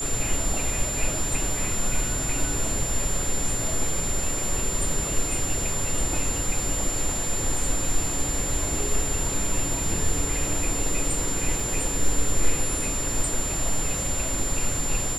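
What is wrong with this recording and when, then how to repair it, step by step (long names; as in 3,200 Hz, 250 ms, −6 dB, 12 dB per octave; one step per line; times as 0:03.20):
whistle 7,200 Hz −28 dBFS
0:11.60: drop-out 2.1 ms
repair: notch filter 7,200 Hz, Q 30
repair the gap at 0:11.60, 2.1 ms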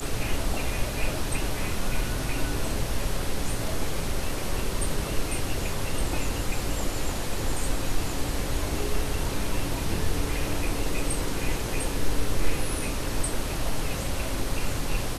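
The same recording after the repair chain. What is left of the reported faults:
none of them is left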